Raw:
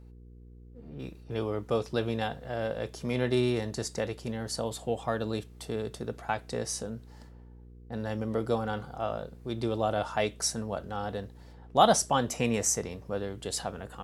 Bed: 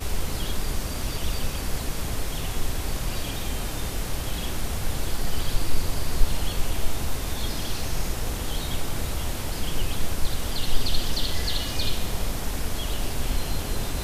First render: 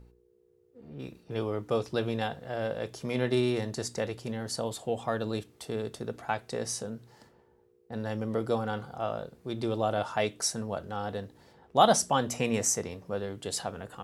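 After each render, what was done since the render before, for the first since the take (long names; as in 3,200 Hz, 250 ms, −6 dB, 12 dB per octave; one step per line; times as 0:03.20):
hum removal 60 Hz, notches 5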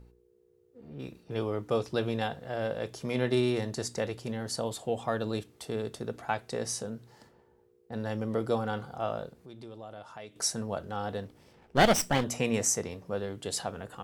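0:09.33–0:10.36: downward compressor 2 to 1, threshold −54 dBFS
0:11.25–0:12.24: lower of the sound and its delayed copy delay 0.37 ms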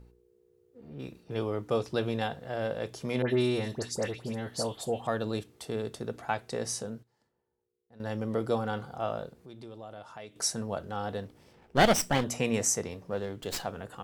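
0:03.22–0:05.07: all-pass dispersion highs, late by 82 ms, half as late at 2,200 Hz
0:06.73–0:08.30: duck −18.5 dB, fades 0.30 s logarithmic
0:13.06–0:13.67: windowed peak hold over 3 samples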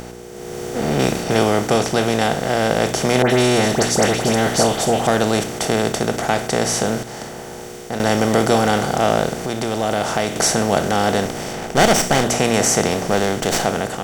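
compressor on every frequency bin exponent 0.4
automatic gain control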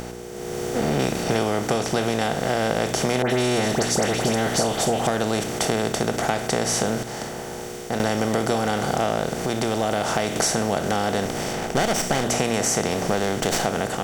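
downward compressor, threshold −18 dBFS, peak gain reduction 9.5 dB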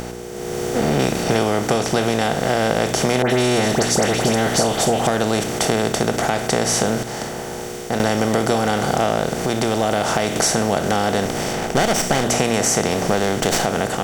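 level +4 dB
brickwall limiter −3 dBFS, peak gain reduction 2.5 dB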